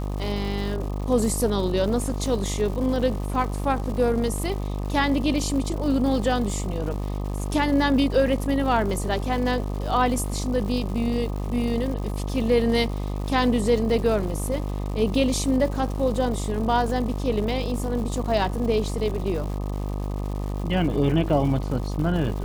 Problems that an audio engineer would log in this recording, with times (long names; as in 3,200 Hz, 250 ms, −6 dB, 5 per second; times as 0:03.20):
mains buzz 50 Hz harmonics 25 −28 dBFS
surface crackle 260 per second −33 dBFS